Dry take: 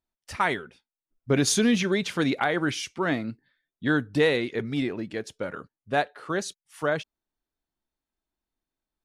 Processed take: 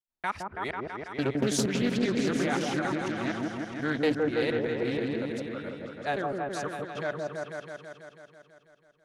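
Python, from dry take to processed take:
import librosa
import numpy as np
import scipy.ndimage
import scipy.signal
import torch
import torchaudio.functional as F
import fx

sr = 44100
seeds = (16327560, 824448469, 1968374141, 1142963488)

y = fx.local_reverse(x, sr, ms=237.0)
y = fx.echo_opening(y, sr, ms=164, hz=750, octaves=1, feedback_pct=70, wet_db=0)
y = fx.doppler_dist(y, sr, depth_ms=0.28)
y = y * librosa.db_to_amplitude(-6.5)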